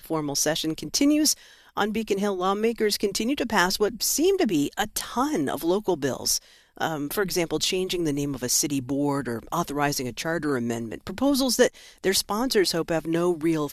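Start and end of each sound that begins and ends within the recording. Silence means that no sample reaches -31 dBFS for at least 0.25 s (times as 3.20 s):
1.77–6.37 s
6.78–11.68 s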